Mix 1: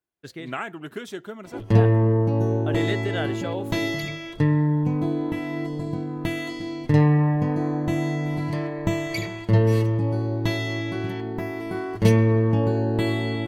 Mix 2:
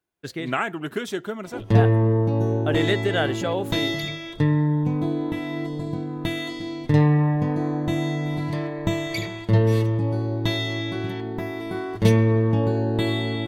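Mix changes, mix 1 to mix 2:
speech +6.0 dB; background: remove band-stop 3.6 kHz, Q 8.2

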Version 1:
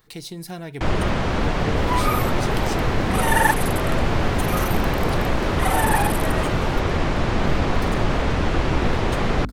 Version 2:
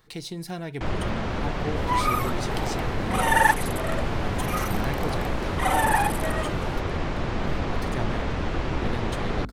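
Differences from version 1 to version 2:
first sound -6.5 dB; master: add treble shelf 11 kHz -10 dB

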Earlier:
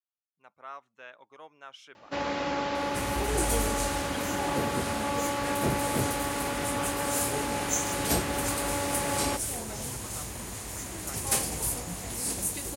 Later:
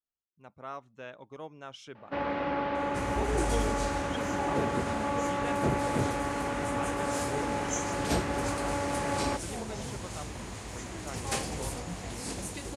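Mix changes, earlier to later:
speech: remove band-pass filter 1.7 kHz, Q 0.73; first sound: add low-pass 2.4 kHz 12 dB/octave; master: add distance through air 83 m

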